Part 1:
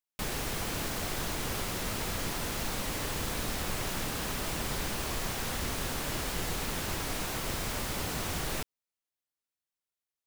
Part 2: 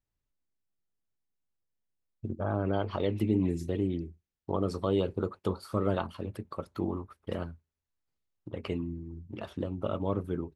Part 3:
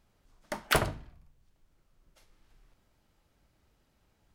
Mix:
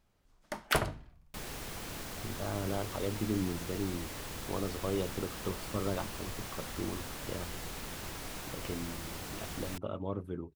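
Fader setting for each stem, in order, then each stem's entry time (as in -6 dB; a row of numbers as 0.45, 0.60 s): -8.0, -6.0, -3.0 dB; 1.15, 0.00, 0.00 s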